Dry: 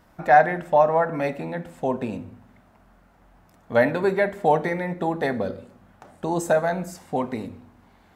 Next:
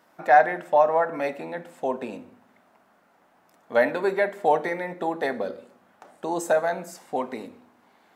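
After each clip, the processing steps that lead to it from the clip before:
high-pass filter 310 Hz 12 dB per octave
level −1 dB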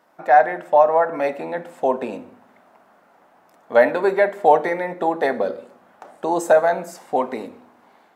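automatic gain control gain up to 5.5 dB
parametric band 700 Hz +5.5 dB 2.5 octaves
level −3 dB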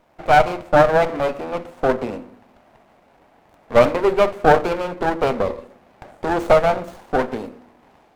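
windowed peak hold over 17 samples
level +2 dB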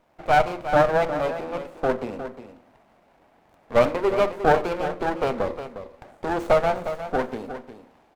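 single-tap delay 357 ms −11 dB
level −5 dB

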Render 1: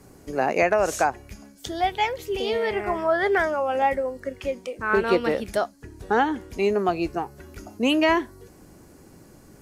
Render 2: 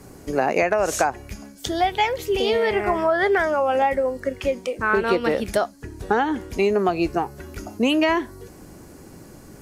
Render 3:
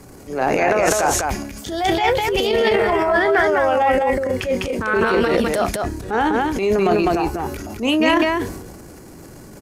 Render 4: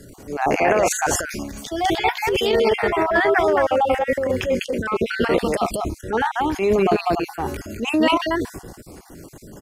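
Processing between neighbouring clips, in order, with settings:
downward compressor 5 to 1, threshold −22 dBFS, peak gain reduction 7 dB; level +6 dB
loudspeakers that aren't time-aligned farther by 11 metres −12 dB, 69 metres −4 dB; transient designer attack −9 dB, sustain +9 dB; level +2 dB
time-frequency cells dropped at random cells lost 31%

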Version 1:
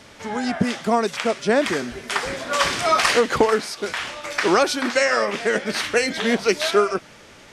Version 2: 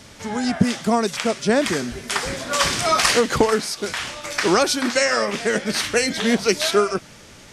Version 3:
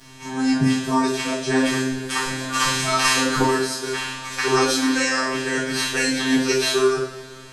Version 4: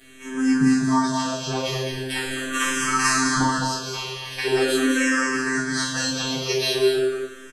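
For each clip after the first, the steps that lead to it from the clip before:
bass and treble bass +7 dB, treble +7 dB; level −1 dB
phases set to zero 131 Hz; coupled-rooms reverb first 0.54 s, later 3.1 s, from −21 dB, DRR −7.5 dB; level −6.5 dB
single-tap delay 207 ms −6 dB; frequency shifter mixed with the dry sound −0.42 Hz

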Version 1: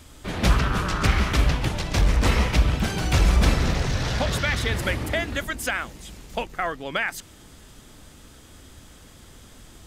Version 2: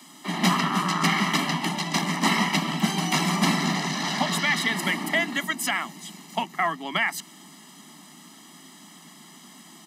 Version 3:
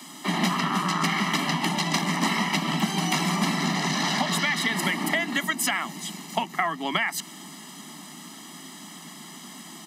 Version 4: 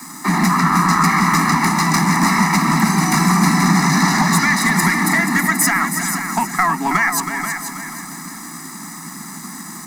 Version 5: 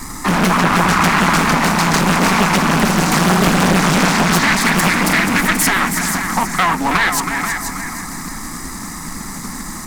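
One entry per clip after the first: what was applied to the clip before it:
Butterworth high-pass 160 Hz 96 dB per octave; comb filter 1 ms, depth 97%
downward compressor, threshold −27 dBFS, peak gain reduction 11 dB; level +5.5 dB
leveller curve on the samples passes 2; phaser with its sweep stopped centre 1,300 Hz, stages 4; echo machine with several playback heads 161 ms, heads second and third, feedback 41%, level −8.5 dB; level +5.5 dB
asymmetric clip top −21 dBFS; background noise brown −37 dBFS; highs frequency-modulated by the lows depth 0.78 ms; level +4 dB

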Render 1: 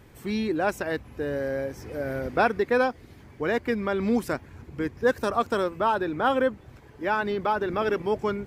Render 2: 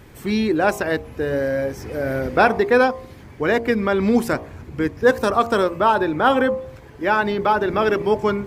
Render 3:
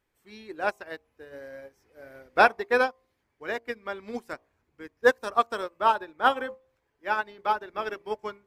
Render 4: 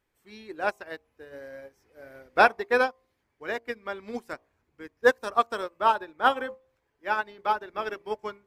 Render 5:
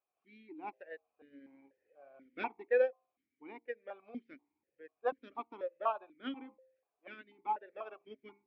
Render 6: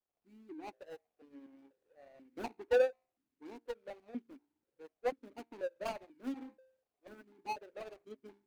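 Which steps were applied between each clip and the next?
hum removal 57.94 Hz, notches 21; level +7.5 dB
parametric band 120 Hz −12.5 dB 3 octaves; expander for the loud parts 2.5 to 1, over −32 dBFS
no processing that can be heard
high-frequency loss of the air 220 metres; formant filter that steps through the vowels 4.1 Hz
running median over 41 samples; level +2.5 dB

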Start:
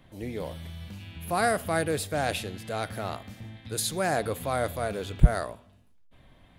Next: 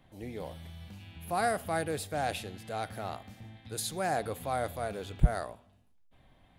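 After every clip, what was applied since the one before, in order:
parametric band 780 Hz +6 dB 0.26 octaves
level −6 dB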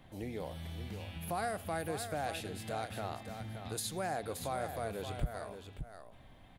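downward compressor 2.5 to 1, threshold −43 dBFS, peak gain reduction 17.5 dB
single-tap delay 574 ms −8.5 dB
level +4 dB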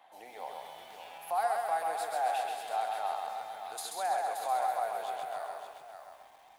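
high-pass with resonance 800 Hz, resonance Q 4.1
feedback echo at a low word length 133 ms, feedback 55%, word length 10 bits, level −3 dB
level −2.5 dB

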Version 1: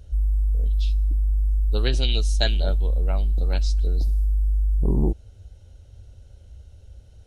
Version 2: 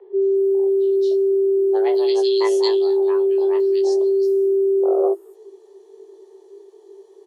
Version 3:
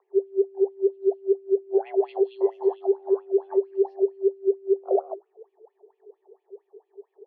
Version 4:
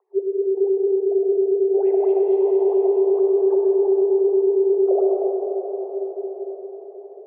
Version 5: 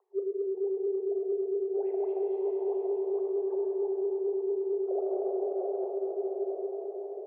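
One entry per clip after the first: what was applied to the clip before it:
frequency shifter +340 Hz; double-tracking delay 18 ms −5 dB; multiband delay without the direct sound lows, highs 220 ms, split 2,600 Hz; level −1.5 dB
parametric band 710 Hz +10 dB 0.65 octaves; LFO wah 4.4 Hz 400–2,700 Hz, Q 8.5; high-frequency loss of the air 440 metres; level +3 dB
resonant band-pass 490 Hz, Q 0.68; convolution reverb RT60 6.0 s, pre-delay 40 ms, DRR −2.5 dB
reversed playback; downward compressor 8 to 1, threshold −28 dBFS, peak gain reduction 13.5 dB; reversed playback; flutter between parallel walls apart 6.4 metres, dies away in 0.21 s

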